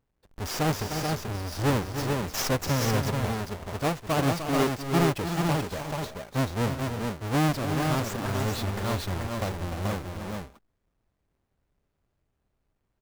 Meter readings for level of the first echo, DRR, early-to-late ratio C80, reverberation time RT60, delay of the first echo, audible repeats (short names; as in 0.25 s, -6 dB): -9.0 dB, none, none, none, 0.301 s, 3